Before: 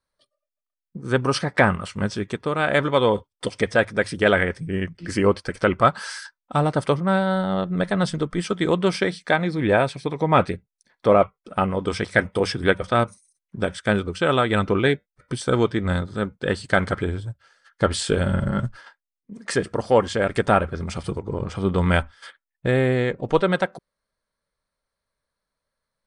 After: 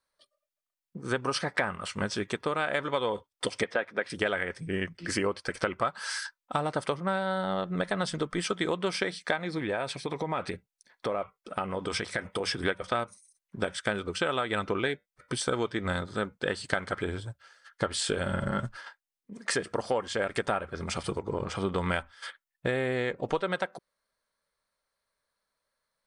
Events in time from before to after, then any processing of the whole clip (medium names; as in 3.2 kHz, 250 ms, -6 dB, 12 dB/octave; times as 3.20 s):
3.64–4.10 s: three-band isolator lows -24 dB, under 170 Hz, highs -18 dB, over 3.9 kHz
9.58–12.62 s: compression, threshold -24 dBFS
whole clip: bass shelf 290 Hz -11 dB; compression 6:1, threshold -27 dBFS; trim +1.5 dB